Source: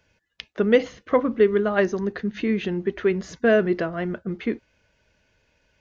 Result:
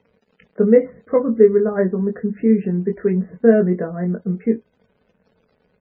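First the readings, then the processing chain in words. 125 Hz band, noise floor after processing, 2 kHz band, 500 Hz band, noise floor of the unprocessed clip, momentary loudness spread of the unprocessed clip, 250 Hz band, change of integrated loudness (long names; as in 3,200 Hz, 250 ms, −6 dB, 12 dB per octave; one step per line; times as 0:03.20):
+8.0 dB, −65 dBFS, −6.5 dB, +5.0 dB, −70 dBFS, 10 LU, +6.5 dB, +5.0 dB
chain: low-pass filter 2,100 Hz 24 dB per octave
double-tracking delay 22 ms −4.5 dB
surface crackle 140 per second −35 dBFS
hollow resonant body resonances 200/440 Hz, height 15 dB, ringing for 35 ms
spectral peaks only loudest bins 64
level −7.5 dB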